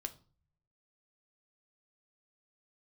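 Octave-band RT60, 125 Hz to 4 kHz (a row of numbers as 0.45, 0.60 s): 1.1, 0.60, 0.40, 0.40, 0.30, 0.35 s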